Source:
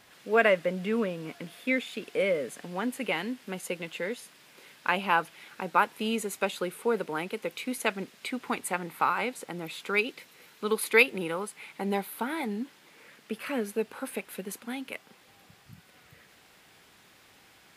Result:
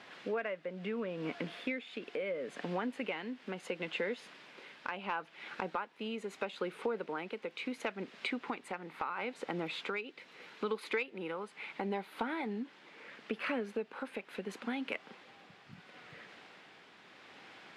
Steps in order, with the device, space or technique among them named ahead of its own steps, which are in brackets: AM radio (band-pass 190–3500 Hz; compression 6:1, threshold -38 dBFS, peak gain reduction 21 dB; saturation -23.5 dBFS, distortion -28 dB; tremolo 0.74 Hz, depth 39%); trim +5.5 dB

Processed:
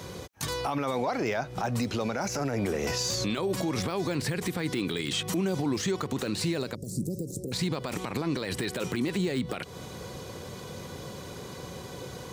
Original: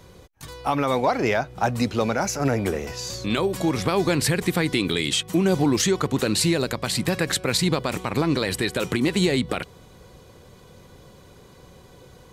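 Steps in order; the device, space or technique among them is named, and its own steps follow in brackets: broadcast voice chain (high-pass 88 Hz; de-esser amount 70%; compression 3:1, threshold -33 dBFS, peak gain reduction 12.5 dB; peaking EQ 5.7 kHz +3 dB 0.77 oct; peak limiter -29 dBFS, peak gain reduction 11 dB); 6.75–7.52 s: inverse Chebyshev band-stop 1.2–2.6 kHz, stop band 70 dB; trim +8.5 dB

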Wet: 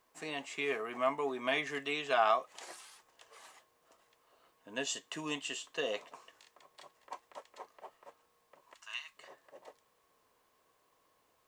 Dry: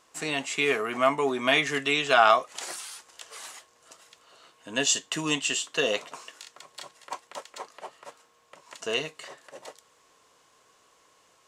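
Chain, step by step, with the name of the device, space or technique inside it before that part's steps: bass shelf 210 Hz -9.5 dB; 8.74–9.17 s: steep high-pass 1 kHz 36 dB/octave; band-stop 1.4 kHz, Q 11; plain cassette with noise reduction switched in (tape noise reduction on one side only decoder only; wow and flutter 23 cents; white noise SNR 33 dB); treble shelf 2.7 kHz -9 dB; trim -7 dB

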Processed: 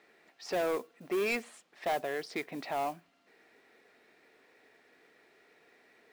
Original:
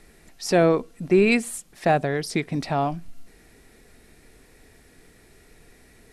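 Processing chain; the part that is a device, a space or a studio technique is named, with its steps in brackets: carbon microphone (band-pass 440–3300 Hz; saturation -22 dBFS, distortion -9 dB; modulation noise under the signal 21 dB); trim -4.5 dB

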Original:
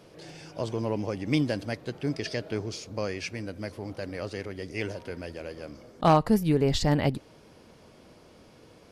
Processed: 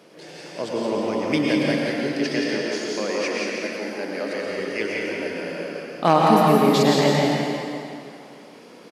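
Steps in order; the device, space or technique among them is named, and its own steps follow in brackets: 2.21–4.29 s: high-pass 160 Hz 24 dB/octave; stadium PA (high-pass 180 Hz 24 dB/octave; peaking EQ 2 kHz +3 dB 0.77 oct; loudspeakers at several distances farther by 59 m -5 dB, 72 m -11 dB; reverberation RT60 2.5 s, pre-delay 93 ms, DRR -2.5 dB); trim +3 dB

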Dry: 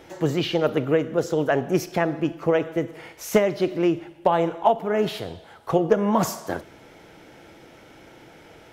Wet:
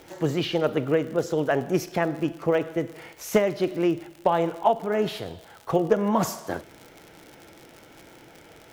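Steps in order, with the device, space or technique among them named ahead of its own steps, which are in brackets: vinyl LP (crackle 79 per s -32 dBFS; white noise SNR 43 dB); trim -2 dB

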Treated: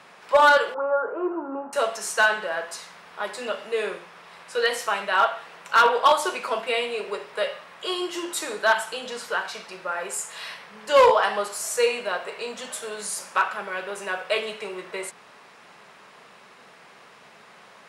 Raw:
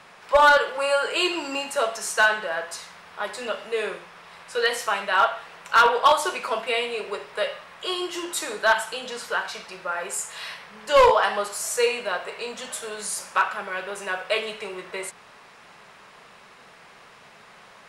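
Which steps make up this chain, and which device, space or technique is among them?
0.74–1.73 s: Chebyshev band-pass 190–1400 Hz, order 4; filter by subtraction (in parallel: low-pass 250 Hz 12 dB/octave + polarity flip); on the sum: trim -1 dB

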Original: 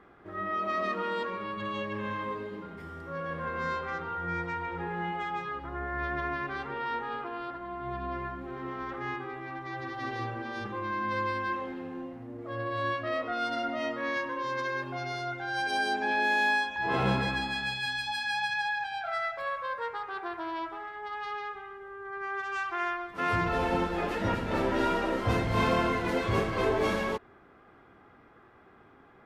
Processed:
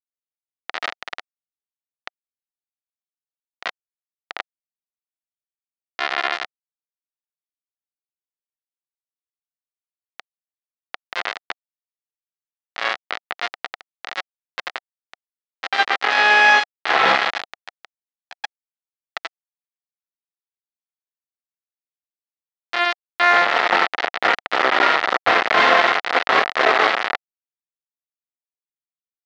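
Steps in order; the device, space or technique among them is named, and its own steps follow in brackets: hand-held game console (bit crusher 4-bit; cabinet simulation 460–4200 Hz, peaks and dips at 740 Hz +7 dB, 1.3 kHz +6 dB, 1.9 kHz +7 dB); trim +9 dB

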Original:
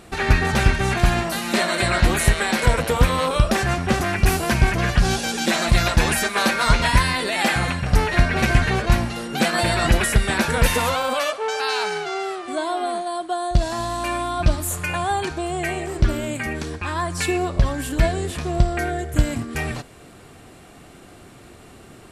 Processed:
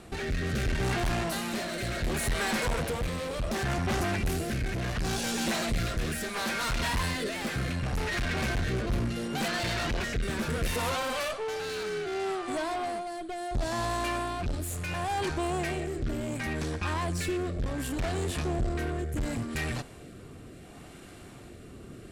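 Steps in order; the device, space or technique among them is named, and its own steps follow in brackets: 9.48–10.22 s: steep low-pass 6.6 kHz; overdriven rotary cabinet (valve stage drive 27 dB, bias 0.45; rotary cabinet horn 0.7 Hz); bass shelf 350 Hz +3 dB

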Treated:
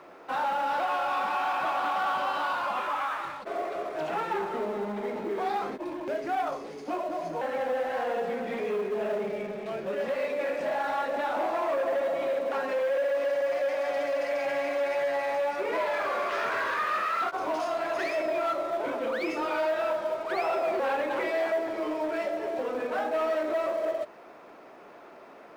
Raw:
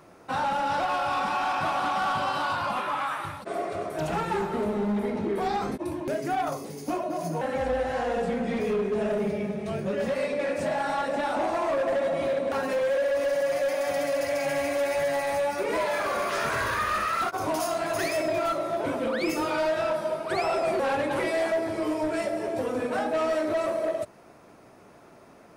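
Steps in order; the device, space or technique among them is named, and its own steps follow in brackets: phone line with mismatched companding (band-pass 350–3400 Hz; companding laws mixed up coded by mu); trim -2 dB

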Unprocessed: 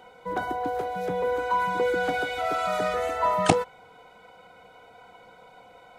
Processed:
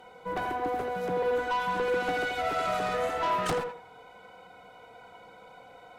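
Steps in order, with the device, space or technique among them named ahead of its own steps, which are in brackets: rockabilly slapback (valve stage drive 25 dB, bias 0.35; tape echo 84 ms, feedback 31%, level -4 dB, low-pass 2.1 kHz)

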